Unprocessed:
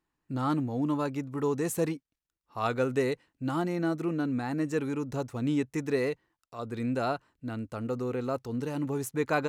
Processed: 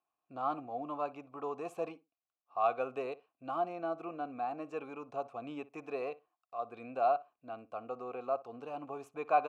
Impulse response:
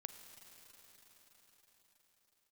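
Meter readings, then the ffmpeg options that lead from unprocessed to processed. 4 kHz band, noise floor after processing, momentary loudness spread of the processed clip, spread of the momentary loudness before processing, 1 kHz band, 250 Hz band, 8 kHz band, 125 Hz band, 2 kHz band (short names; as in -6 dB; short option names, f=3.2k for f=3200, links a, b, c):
-13.5 dB, under -85 dBFS, 12 LU, 8 LU, +1.5 dB, -16.0 dB, under -20 dB, -23.0 dB, -10.0 dB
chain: -filter_complex "[0:a]asplit=3[a][b][c];[a]bandpass=f=730:t=q:w=8,volume=0dB[d];[b]bandpass=f=1.09k:t=q:w=8,volume=-6dB[e];[c]bandpass=f=2.44k:t=q:w=8,volume=-9dB[f];[d][e][f]amix=inputs=3:normalize=0,asplit=2[g][h];[h]adelay=61,lowpass=f=1.9k:p=1,volume=-18dB,asplit=2[i][j];[j]adelay=61,lowpass=f=1.9k:p=1,volume=0.16[k];[g][i][k]amix=inputs=3:normalize=0,acrossover=split=1400[l][m];[l]crystalizer=i=5.5:c=0[n];[n][m]amix=inputs=2:normalize=0,volume=5.5dB"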